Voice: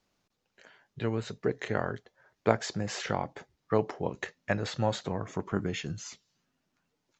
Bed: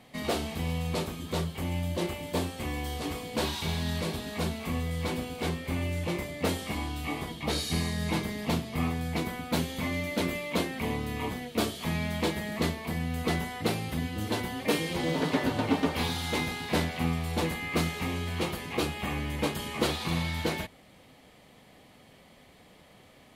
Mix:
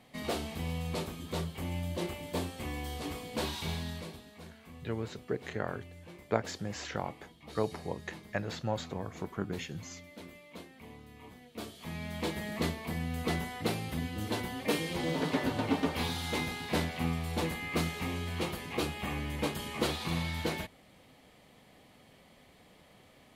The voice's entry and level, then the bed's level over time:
3.85 s, −5.0 dB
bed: 0:03.73 −4.5 dB
0:04.41 −19 dB
0:11.22 −19 dB
0:12.43 −3.5 dB

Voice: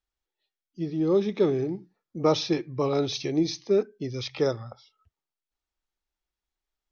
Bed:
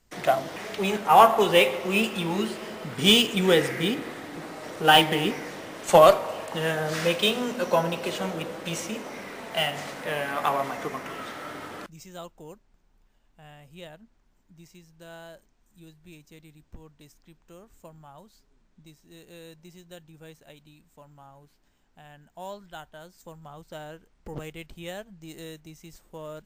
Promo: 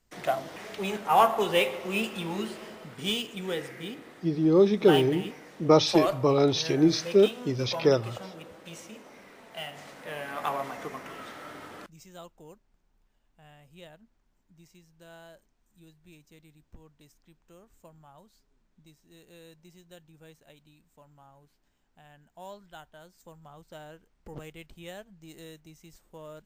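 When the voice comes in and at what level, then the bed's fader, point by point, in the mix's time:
3.45 s, +3.0 dB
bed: 0:02.62 −5.5 dB
0:03.16 −12.5 dB
0:09.60 −12.5 dB
0:10.47 −5.5 dB

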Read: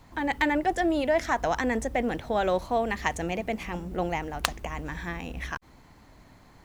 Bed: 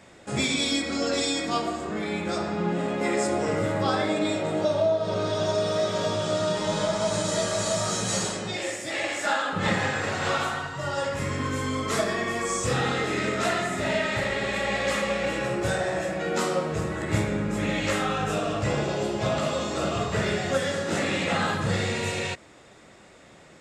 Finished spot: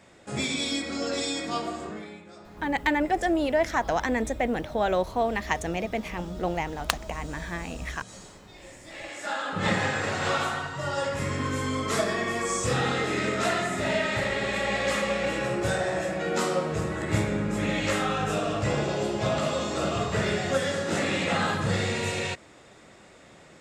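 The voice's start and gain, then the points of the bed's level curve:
2.45 s, +0.5 dB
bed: 0:01.86 −3.5 dB
0:02.27 −19.5 dB
0:08.51 −19.5 dB
0:09.66 −0.5 dB

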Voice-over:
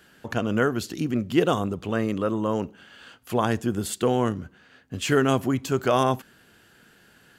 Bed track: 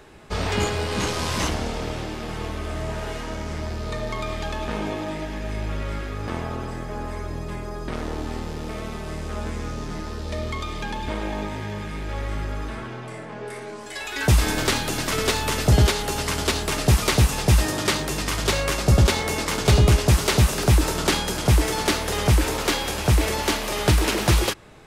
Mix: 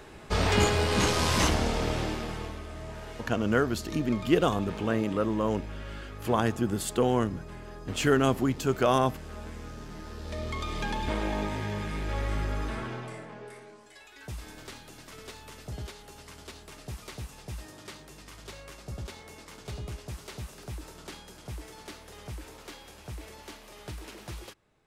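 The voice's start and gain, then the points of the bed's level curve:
2.95 s, −2.5 dB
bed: 0:02.09 0 dB
0:02.68 −11.5 dB
0:09.94 −11.5 dB
0:10.82 −2 dB
0:12.94 −2 dB
0:14.20 −22.5 dB

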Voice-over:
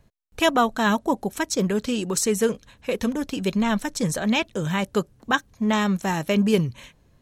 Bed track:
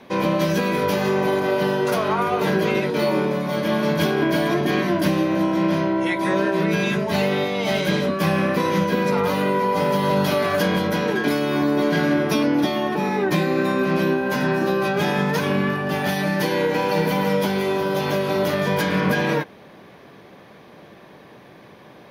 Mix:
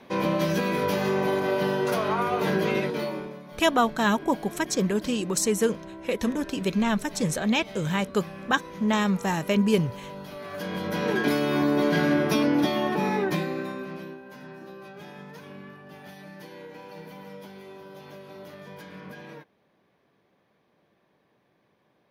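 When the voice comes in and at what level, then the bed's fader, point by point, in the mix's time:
3.20 s, −2.0 dB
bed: 0:02.85 −4.5 dB
0:03.45 −20.5 dB
0:10.31 −20.5 dB
0:11.12 −3 dB
0:13.14 −3 dB
0:14.24 −22.5 dB

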